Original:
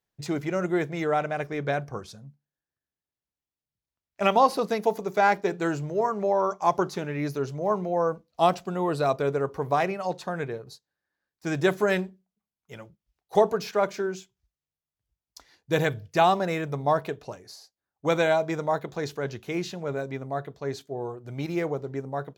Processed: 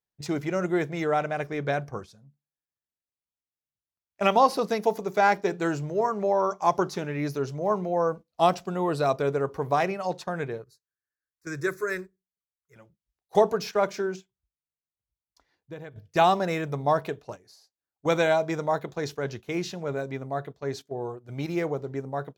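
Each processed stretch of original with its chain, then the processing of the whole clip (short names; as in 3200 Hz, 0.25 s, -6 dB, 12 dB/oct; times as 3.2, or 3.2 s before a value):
10.64–12.76 bell 630 Hz -14 dB 0.76 oct + fixed phaser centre 830 Hz, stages 6
14.16–15.96 high shelf 3100 Hz -12 dB + compressor 8:1, threshold -35 dBFS
whole clip: gate -38 dBFS, range -9 dB; dynamic EQ 5500 Hz, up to +4 dB, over -56 dBFS, Q 5.8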